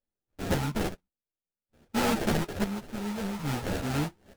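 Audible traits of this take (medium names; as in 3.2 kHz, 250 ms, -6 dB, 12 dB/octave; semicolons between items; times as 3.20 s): a buzz of ramps at a fixed pitch in blocks of 16 samples; chopped level 0.59 Hz, depth 65%, duty 55%; aliases and images of a low sample rate 1.1 kHz, jitter 20%; a shimmering, thickened sound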